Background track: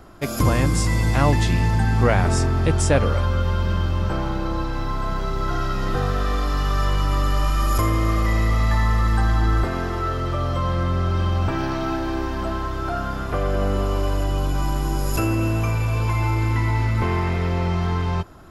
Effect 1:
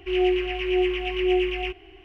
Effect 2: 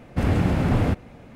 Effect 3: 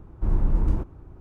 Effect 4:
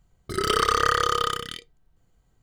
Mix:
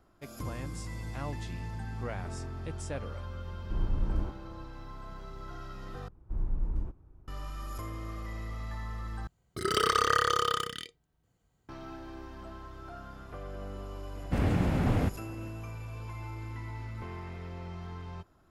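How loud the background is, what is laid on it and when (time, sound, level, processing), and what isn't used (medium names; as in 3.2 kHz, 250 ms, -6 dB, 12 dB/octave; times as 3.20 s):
background track -19.5 dB
3.48 s: add 3 -8.5 dB
6.08 s: replace with 3 -15 dB + bass shelf 83 Hz +6.5 dB
9.27 s: replace with 4 -4.5 dB + high-pass 61 Hz
14.15 s: add 2 -6.5 dB
not used: 1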